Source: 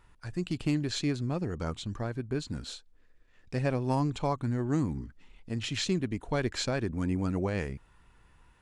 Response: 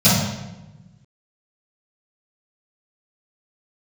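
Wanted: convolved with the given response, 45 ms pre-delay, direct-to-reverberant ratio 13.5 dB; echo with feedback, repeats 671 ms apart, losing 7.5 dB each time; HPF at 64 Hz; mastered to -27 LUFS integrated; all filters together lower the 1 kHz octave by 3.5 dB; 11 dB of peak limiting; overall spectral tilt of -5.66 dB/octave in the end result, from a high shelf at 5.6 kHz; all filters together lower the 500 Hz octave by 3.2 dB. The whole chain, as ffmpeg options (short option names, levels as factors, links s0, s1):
-filter_complex "[0:a]highpass=64,equalizer=f=500:t=o:g=-3.5,equalizer=f=1000:t=o:g=-3.5,highshelf=f=5600:g=8,alimiter=level_in=1.41:limit=0.0631:level=0:latency=1,volume=0.708,aecho=1:1:671|1342|2013|2684|3355:0.422|0.177|0.0744|0.0312|0.0131,asplit=2[s0][s1];[1:a]atrim=start_sample=2205,adelay=45[s2];[s1][s2]afir=irnorm=-1:irlink=0,volume=0.0158[s3];[s0][s3]amix=inputs=2:normalize=0,volume=2.24"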